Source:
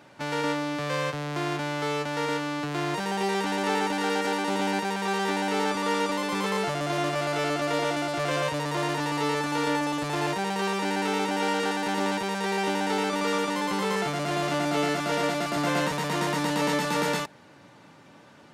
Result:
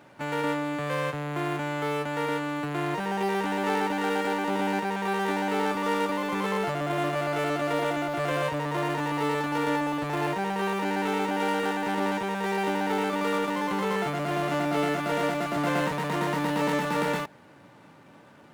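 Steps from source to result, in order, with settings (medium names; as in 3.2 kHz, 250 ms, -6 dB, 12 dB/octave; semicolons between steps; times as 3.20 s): median filter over 9 samples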